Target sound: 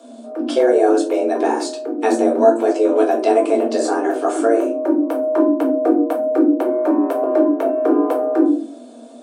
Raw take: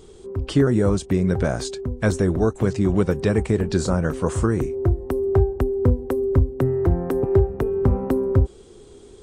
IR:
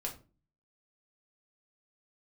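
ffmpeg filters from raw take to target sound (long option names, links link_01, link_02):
-filter_complex "[0:a]asuperstop=centerf=1700:order=4:qfactor=7.4[link_01];[1:a]atrim=start_sample=2205[link_02];[link_01][link_02]afir=irnorm=-1:irlink=0,afreqshift=230,volume=2.5dB"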